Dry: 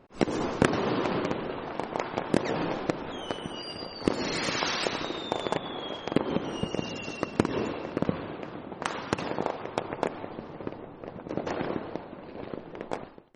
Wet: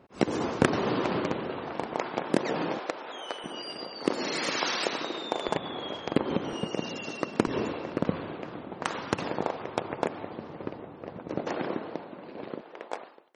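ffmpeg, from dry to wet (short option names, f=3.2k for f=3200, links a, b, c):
-af "asetnsamples=n=441:p=0,asendcmd='1.94 highpass f 160;2.79 highpass f 530;3.44 highpass f 230;5.48 highpass f 59;6.53 highpass f 150;7.47 highpass f 71;11.42 highpass f 160;12.61 highpass f 500',highpass=65"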